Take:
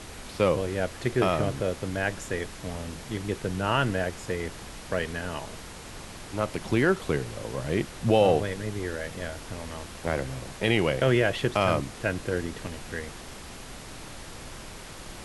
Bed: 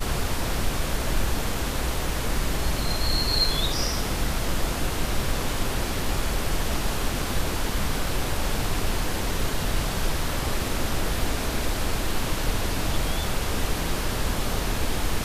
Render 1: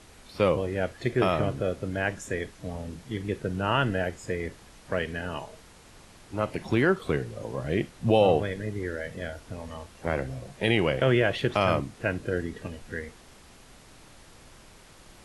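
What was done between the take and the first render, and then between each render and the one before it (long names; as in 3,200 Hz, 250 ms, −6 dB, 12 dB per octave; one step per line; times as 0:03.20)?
noise reduction from a noise print 10 dB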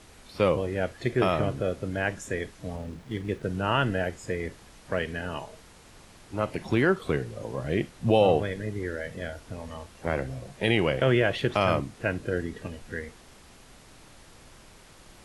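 0:02.76–0:03.43: slack as between gear wheels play −51 dBFS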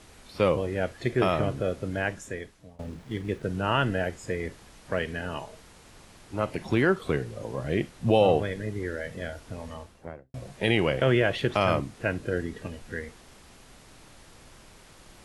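0:01.98–0:02.79: fade out, to −22.5 dB
0:09.66–0:10.34: fade out and dull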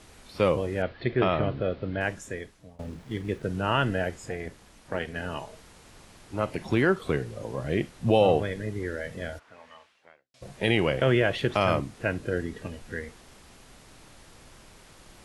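0:00.82–0:02.01: Butterworth low-pass 4,500 Hz 48 dB per octave
0:04.28–0:05.16: amplitude modulation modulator 260 Hz, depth 50%
0:09.38–0:10.41: resonant band-pass 1,300 Hz → 4,800 Hz, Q 1.2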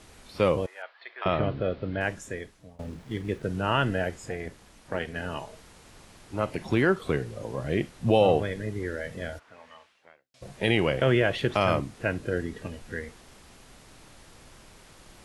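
0:00.66–0:01.26: four-pole ladder high-pass 760 Hz, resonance 35%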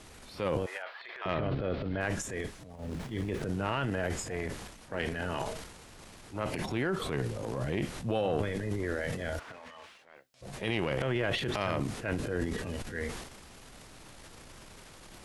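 downward compressor 4 to 1, threshold −28 dBFS, peak gain reduction 11 dB
transient designer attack −7 dB, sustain +11 dB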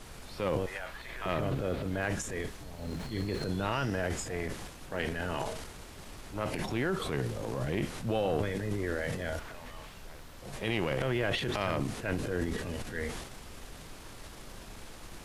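mix in bed −23 dB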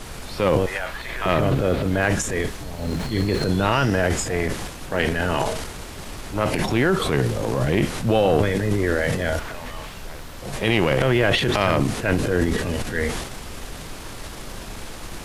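level +12 dB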